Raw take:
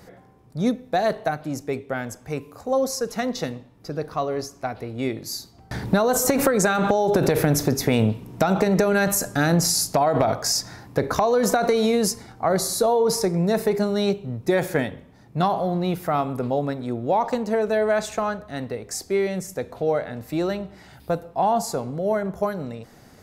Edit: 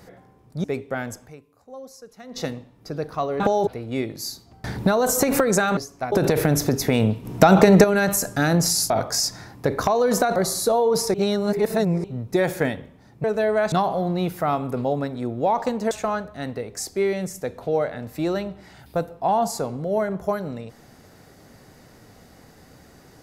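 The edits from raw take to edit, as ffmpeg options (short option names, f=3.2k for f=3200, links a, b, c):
-filter_complex "[0:a]asplit=17[a][b][c][d][e][f][g][h][i][j][k][l][m][n][o][p][q];[a]atrim=end=0.642[r];[b]atrim=start=1.628:end=2.62,asetpts=PTS-STARTPTS,afade=t=out:st=0.612:d=0.38:c=exp:silence=0.133352[s];[c]atrim=start=2.62:end=2.99,asetpts=PTS-STARTPTS,volume=-17.5dB[t];[d]atrim=start=2.99:end=4.392,asetpts=PTS-STARTPTS,afade=t=in:d=0.38:c=exp:silence=0.133352[u];[e]atrim=start=6.838:end=7.112[v];[f]atrim=start=4.738:end=6.842[w];[g]atrim=start=4.388:end=4.742[x];[h]atrim=start=7.108:end=8.242[y];[i]atrim=start=8.238:end=8.832,asetpts=PTS-STARTPTS,volume=7dB[z];[j]atrim=start=8.828:end=9.892[aa];[k]atrim=start=10.218:end=11.682[ab];[l]atrim=start=12.498:end=13.282[ac];[m]atrim=start=13.278:end=14.182,asetpts=PTS-STARTPTS,areverse[ad];[n]atrim=start=14.178:end=15.382[ae];[o]atrim=start=17.568:end=18.052[af];[p]atrim=start=15.378:end=17.572[ag];[q]atrim=start=18.048[ah];[s][t][u]concat=n=3:v=0:a=1[ai];[r][ai]acrossfade=d=0.004:c1=hsin:c2=hsin[aj];[aj][v]acrossfade=d=0.004:c1=hsin:c2=hsin[ak];[ak][w]acrossfade=d=0.004:c1=hsin:c2=hsin[al];[al][x]acrossfade=d=0.004:c1=hsin:c2=hsin[am];[am][y]acrossfade=d=0.004:c1=hsin:c2=hsin[an];[an][z]acrossfade=d=0.004:c1=hsin:c2=hsin[ao];[ao][aa]acrossfade=d=0.004:c1=hsin:c2=hsin[ap];[ap][ab]acrossfade=d=0.004:c1=hsin:c2=hsin[aq];[aq][ac]acrossfade=d=0.004:c1=hsin:c2=hsin[ar];[ar][ad]acrossfade=d=0.004:c1=hsin:c2=hsin[as];[as][ae]acrossfade=d=0.004:c1=hsin:c2=hsin[at];[at][af]acrossfade=d=0.004:c1=hsin:c2=hsin[au];[au][ag]acrossfade=d=0.004:c1=hsin:c2=hsin[av];[av][ah]acrossfade=d=0.004:c1=hsin:c2=hsin"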